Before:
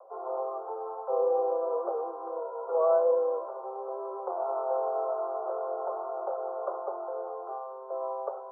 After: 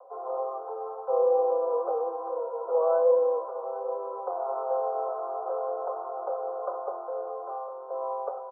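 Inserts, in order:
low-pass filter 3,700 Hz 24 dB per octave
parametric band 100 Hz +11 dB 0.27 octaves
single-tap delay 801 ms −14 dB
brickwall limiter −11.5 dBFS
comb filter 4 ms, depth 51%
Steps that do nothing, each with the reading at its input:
low-pass filter 3,700 Hz: nothing at its input above 1,400 Hz
parametric band 100 Hz: nothing at its input below 320 Hz
brickwall limiter −11.5 dBFS: peak of its input −15.0 dBFS

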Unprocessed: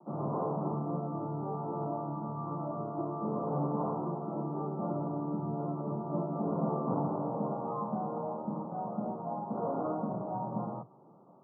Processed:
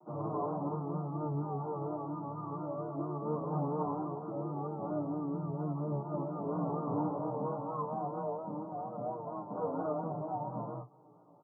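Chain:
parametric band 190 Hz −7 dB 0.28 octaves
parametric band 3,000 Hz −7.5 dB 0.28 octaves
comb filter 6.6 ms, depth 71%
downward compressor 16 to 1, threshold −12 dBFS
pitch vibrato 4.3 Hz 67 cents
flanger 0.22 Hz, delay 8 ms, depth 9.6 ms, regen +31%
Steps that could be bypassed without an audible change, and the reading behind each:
parametric band 3,000 Hz: nothing at its input above 1,400 Hz
downward compressor, threshold −12 dBFS: peak of its input −18.5 dBFS

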